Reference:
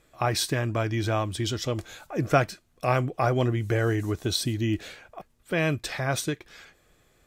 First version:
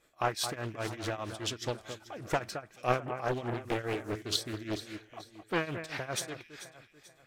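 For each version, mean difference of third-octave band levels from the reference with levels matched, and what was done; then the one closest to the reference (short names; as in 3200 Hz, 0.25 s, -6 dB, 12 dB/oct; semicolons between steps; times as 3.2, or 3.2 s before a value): 7.0 dB: low shelf 210 Hz -10.5 dB; tremolo triangle 4.9 Hz, depth 90%; echo with dull and thin repeats by turns 0.219 s, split 2400 Hz, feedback 61%, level -9.5 dB; Doppler distortion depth 0.75 ms; gain -1.5 dB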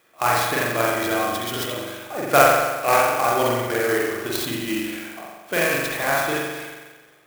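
11.5 dB: weighting filter A; tremolo 3.8 Hz, depth 58%; spring tank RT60 1.3 s, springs 42 ms, chirp 55 ms, DRR -5.5 dB; clock jitter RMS 0.038 ms; gain +5 dB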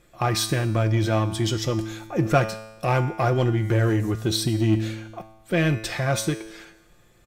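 3.5 dB: low shelf 330 Hz +4 dB; resonator 110 Hz, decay 0.97 s, harmonics all, mix 70%; in parallel at -3 dB: hard clip -32 dBFS, distortion -8 dB; on the sum: comb 5.7 ms, depth 39%; gain +6.5 dB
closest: third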